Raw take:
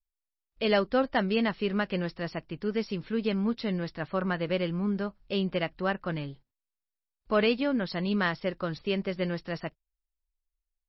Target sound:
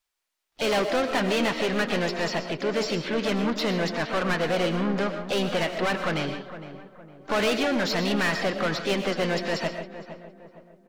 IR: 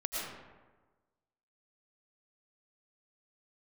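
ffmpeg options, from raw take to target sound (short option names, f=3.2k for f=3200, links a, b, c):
-filter_complex "[0:a]asplit=2[a][b];[b]highpass=f=720:p=1,volume=29dB,asoftclip=type=tanh:threshold=-12.5dB[c];[a][c]amix=inputs=2:normalize=0,lowpass=f=4.8k:p=1,volume=-6dB,asplit=2[d][e];[e]adelay=460,lowpass=f=1.4k:p=1,volume=-11.5dB,asplit=2[f][g];[g]adelay=460,lowpass=f=1.4k:p=1,volume=0.43,asplit=2[h][i];[i]adelay=460,lowpass=f=1.4k:p=1,volume=0.43,asplit=2[j][k];[k]adelay=460,lowpass=f=1.4k:p=1,volume=0.43[l];[d][f][h][j][l]amix=inputs=5:normalize=0,asplit=2[m][n];[n]asetrate=58866,aresample=44100,atempo=0.749154,volume=-9dB[o];[m][o]amix=inputs=2:normalize=0,asplit=2[p][q];[1:a]atrim=start_sample=2205,afade=t=out:st=0.22:d=0.01,atrim=end_sample=10143[r];[q][r]afir=irnorm=-1:irlink=0,volume=-6dB[s];[p][s]amix=inputs=2:normalize=0,volume=-8.5dB"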